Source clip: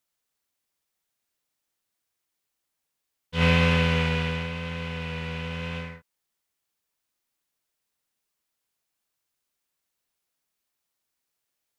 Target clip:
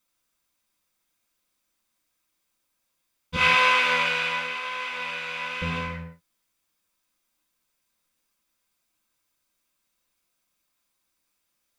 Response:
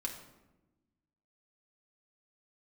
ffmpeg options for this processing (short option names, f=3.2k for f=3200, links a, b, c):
-filter_complex "[0:a]asettb=1/sr,asplit=3[a][b][c];[a]atrim=end=3.364[d];[b]atrim=start=3.36:end=5.62,asetpts=PTS-STARTPTS,afade=t=in:d=0.004:c=qsin,afade=t=out:st=2.256:d=0.004:c=qsin,highpass=740[e];[c]atrim=start=5.616[f];[d][e]acrossfade=d=0.004:c1=hsin:c2=qsin[g];[g][f]acrossfade=d=0.004:c1=qsin:c2=hsin[h];[1:a]atrim=start_sample=2205,afade=t=out:st=0.24:d=0.01,atrim=end_sample=11025[i];[h][i]afir=irnorm=-1:irlink=0,volume=5.5dB"